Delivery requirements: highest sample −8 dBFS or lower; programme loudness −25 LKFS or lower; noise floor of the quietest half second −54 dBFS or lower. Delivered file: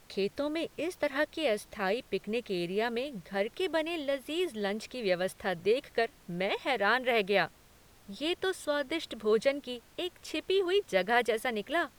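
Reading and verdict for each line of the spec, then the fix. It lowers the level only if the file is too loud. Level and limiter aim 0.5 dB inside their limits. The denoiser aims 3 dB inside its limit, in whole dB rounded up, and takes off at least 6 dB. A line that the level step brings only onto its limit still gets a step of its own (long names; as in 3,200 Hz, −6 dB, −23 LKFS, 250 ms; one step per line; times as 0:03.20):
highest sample −12.5 dBFS: in spec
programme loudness −31.5 LKFS: in spec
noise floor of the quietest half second −59 dBFS: in spec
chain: no processing needed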